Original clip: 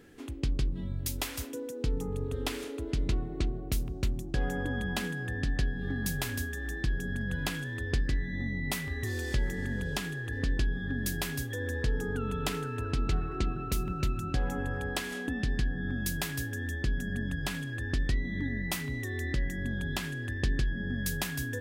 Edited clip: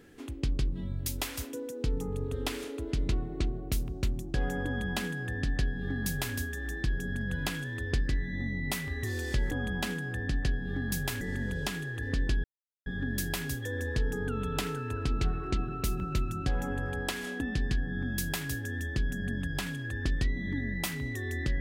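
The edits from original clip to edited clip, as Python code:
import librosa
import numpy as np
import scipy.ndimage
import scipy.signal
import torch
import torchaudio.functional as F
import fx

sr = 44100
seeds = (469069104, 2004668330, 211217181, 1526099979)

y = fx.edit(x, sr, fx.duplicate(start_s=4.65, length_s=1.7, to_s=9.51),
    fx.insert_silence(at_s=10.74, length_s=0.42), tone=tone)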